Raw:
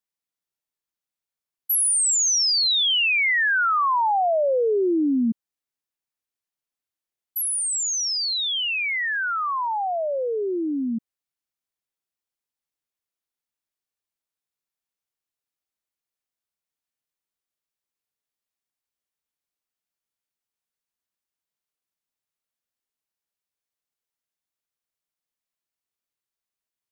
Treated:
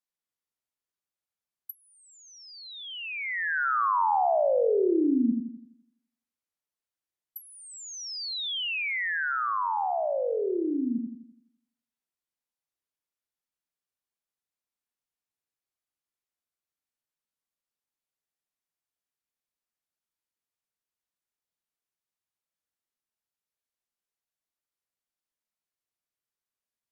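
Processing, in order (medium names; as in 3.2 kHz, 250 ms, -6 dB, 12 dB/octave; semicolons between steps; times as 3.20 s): bucket-brigade echo 84 ms, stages 1024, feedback 46%, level -4 dB; low-pass that closes with the level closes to 1.4 kHz, closed at -18.5 dBFS; trim -4.5 dB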